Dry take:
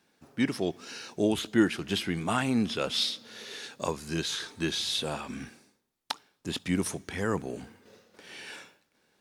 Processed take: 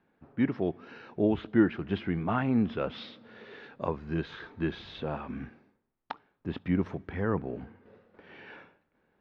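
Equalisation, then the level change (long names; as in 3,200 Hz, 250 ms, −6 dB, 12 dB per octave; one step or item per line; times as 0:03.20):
low-pass filter 1,900 Hz 12 dB per octave
high-frequency loss of the air 170 metres
low-shelf EQ 77 Hz +9 dB
0.0 dB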